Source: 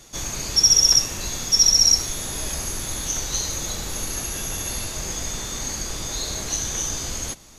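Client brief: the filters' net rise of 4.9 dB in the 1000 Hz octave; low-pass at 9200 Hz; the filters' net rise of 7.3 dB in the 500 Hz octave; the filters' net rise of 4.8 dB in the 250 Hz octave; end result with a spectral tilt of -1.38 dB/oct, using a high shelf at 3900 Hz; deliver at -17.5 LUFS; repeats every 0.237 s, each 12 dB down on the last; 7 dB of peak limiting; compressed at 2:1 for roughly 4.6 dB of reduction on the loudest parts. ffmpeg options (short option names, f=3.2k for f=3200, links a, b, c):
-af "lowpass=9.2k,equalizer=f=250:t=o:g=4,equalizer=f=500:t=o:g=7,equalizer=f=1k:t=o:g=3.5,highshelf=f=3.9k:g=4.5,acompressor=threshold=-17dB:ratio=2,alimiter=limit=-13dB:level=0:latency=1,aecho=1:1:237|474|711:0.251|0.0628|0.0157,volume=5dB"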